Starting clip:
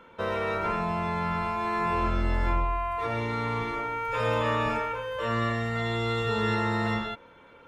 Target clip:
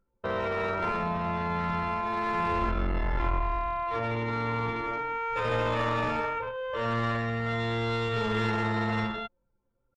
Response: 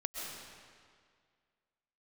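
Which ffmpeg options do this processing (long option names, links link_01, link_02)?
-af "aeval=exprs='clip(val(0),-1,0.0501)':channel_layout=same,anlmdn=6.31,atempo=0.77"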